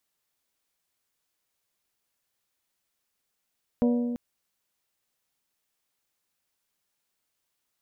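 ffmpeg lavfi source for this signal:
-f lavfi -i "aevalsrc='0.112*pow(10,-3*t/1.99)*sin(2*PI*241*t)+0.0562*pow(10,-3*t/1.225)*sin(2*PI*482*t)+0.0282*pow(10,-3*t/1.078)*sin(2*PI*578.4*t)+0.0141*pow(10,-3*t/0.922)*sin(2*PI*723*t)+0.00708*pow(10,-3*t/0.754)*sin(2*PI*964*t)':d=0.34:s=44100"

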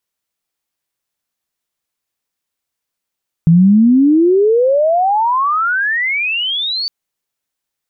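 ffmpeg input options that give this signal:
-f lavfi -i "aevalsrc='pow(10,(-4.5-12*t/3.41)/20)*sin(2*PI*160*3.41/log(4600/160)*(exp(log(4600/160)*t/3.41)-1))':d=3.41:s=44100"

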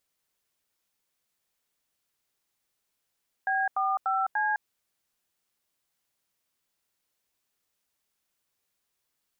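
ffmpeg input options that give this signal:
-f lavfi -i "aevalsrc='0.0473*clip(min(mod(t,0.294),0.208-mod(t,0.294))/0.002,0,1)*(eq(floor(t/0.294),0)*(sin(2*PI*770*mod(t,0.294))+sin(2*PI*1633*mod(t,0.294)))+eq(floor(t/0.294),1)*(sin(2*PI*770*mod(t,0.294))+sin(2*PI*1209*mod(t,0.294)))+eq(floor(t/0.294),2)*(sin(2*PI*770*mod(t,0.294))+sin(2*PI*1336*mod(t,0.294)))+eq(floor(t/0.294),3)*(sin(2*PI*852*mod(t,0.294))+sin(2*PI*1633*mod(t,0.294))))':d=1.176:s=44100"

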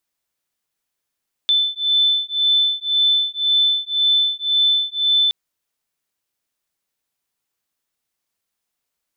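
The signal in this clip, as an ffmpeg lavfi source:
-f lavfi -i "aevalsrc='0.126*(sin(2*PI*3520*t)+sin(2*PI*3521.9*t))':d=3.82:s=44100"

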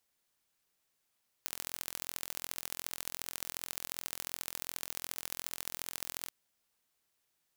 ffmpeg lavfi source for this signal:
-f lavfi -i "aevalsrc='0.355*eq(mod(n,1033),0)*(0.5+0.5*eq(mod(n,3099),0))':d=4.84:s=44100"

